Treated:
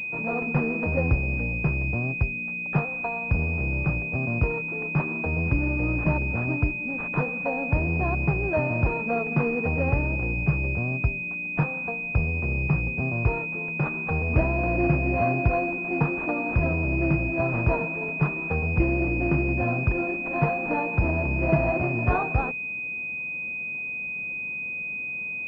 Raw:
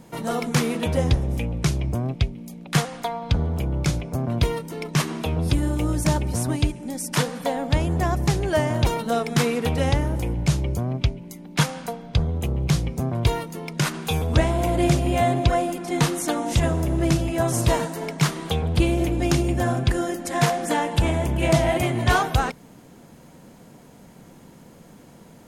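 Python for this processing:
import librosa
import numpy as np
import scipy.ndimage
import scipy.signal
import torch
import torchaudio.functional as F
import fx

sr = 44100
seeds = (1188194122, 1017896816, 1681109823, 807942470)

y = np.repeat(x[::6], 6)[:len(x)]
y = fx.pwm(y, sr, carrier_hz=2500.0)
y = y * librosa.db_to_amplitude(-3.0)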